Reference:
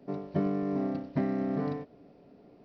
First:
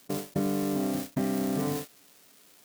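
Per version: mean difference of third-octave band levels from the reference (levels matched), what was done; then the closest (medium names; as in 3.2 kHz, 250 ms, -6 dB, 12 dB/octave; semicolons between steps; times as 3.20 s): 11.0 dB: zero-crossing glitches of -26.5 dBFS; gate -34 dBFS, range -45 dB; level flattener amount 50%; trim -1 dB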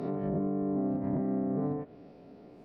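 5.0 dB: reverse spectral sustain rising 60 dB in 0.71 s; low-pass that closes with the level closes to 880 Hz, closed at -28 dBFS; peak limiter -25.5 dBFS, peak gain reduction 9 dB; trim +2 dB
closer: second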